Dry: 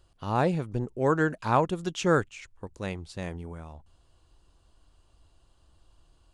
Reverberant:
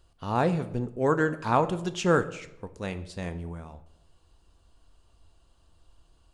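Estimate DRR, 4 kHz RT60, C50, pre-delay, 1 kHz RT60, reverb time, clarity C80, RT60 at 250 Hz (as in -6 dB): 9.5 dB, 0.60 s, 14.5 dB, 4 ms, 0.80 s, 0.85 s, 17.5 dB, 0.95 s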